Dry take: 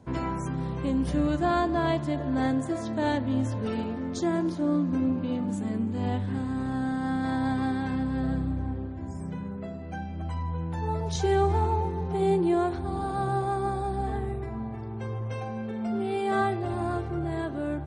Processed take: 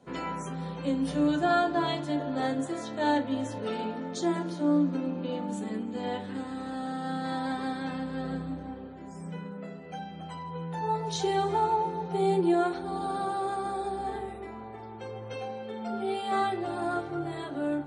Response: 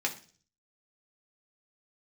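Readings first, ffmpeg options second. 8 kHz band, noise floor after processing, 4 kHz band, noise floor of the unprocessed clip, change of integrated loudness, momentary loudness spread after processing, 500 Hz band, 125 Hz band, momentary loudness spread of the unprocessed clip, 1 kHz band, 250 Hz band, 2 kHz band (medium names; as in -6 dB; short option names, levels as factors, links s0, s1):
0.0 dB, -43 dBFS, +3.0 dB, -36 dBFS, -2.0 dB, 15 LU, -1.5 dB, -8.5 dB, 10 LU, +0.5 dB, -3.0 dB, -1.0 dB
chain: -filter_complex "[1:a]atrim=start_sample=2205,afade=t=out:st=0.18:d=0.01,atrim=end_sample=8379,asetrate=74970,aresample=44100[s0];[0:a][s0]afir=irnorm=-1:irlink=0"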